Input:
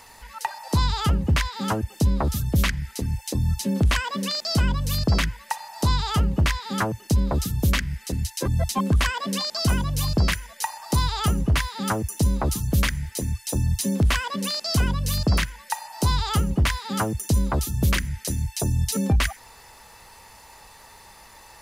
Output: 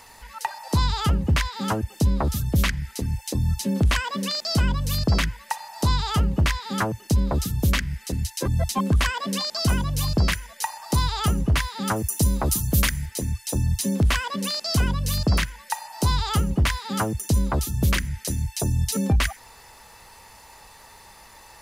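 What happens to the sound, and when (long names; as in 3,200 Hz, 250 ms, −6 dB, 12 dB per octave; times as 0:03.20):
0:11.96–0:13.06: high-shelf EQ 7,700 Hz +10.5 dB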